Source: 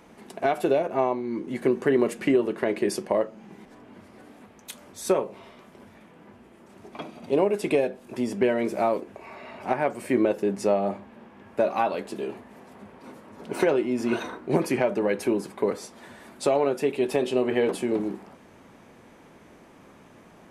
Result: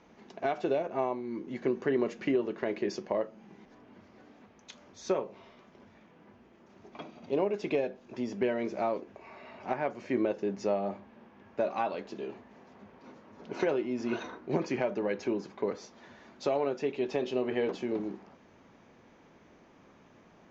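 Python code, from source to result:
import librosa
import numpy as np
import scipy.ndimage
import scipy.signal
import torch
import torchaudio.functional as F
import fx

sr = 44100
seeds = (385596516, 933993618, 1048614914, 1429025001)

y = scipy.signal.sosfilt(scipy.signal.butter(16, 6800.0, 'lowpass', fs=sr, output='sos'), x)
y = y * 10.0 ** (-7.0 / 20.0)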